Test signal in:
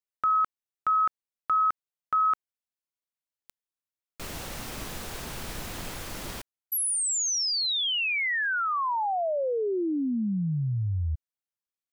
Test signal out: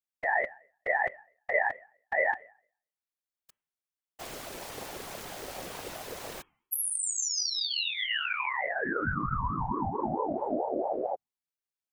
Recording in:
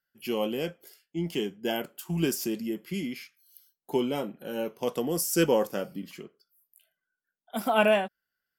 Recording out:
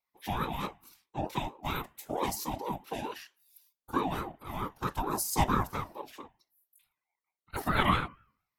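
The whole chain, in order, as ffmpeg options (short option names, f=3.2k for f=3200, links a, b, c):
-af "bandreject=f=317.2:t=h:w=4,bandreject=f=634.4:t=h:w=4,bandreject=f=951.6:t=h:w=4,bandreject=f=1.2688k:t=h:w=4,bandreject=f=1.586k:t=h:w=4,bandreject=f=1.9032k:t=h:w=4,bandreject=f=2.2204k:t=h:w=4,bandreject=f=2.5376k:t=h:w=4,afftfilt=real='hypot(re,im)*cos(2*PI*random(0))':imag='hypot(re,im)*sin(2*PI*random(1))':win_size=512:overlap=0.75,aeval=exprs='val(0)*sin(2*PI*580*n/s+580*0.25/4.5*sin(2*PI*4.5*n/s))':c=same,volume=5dB"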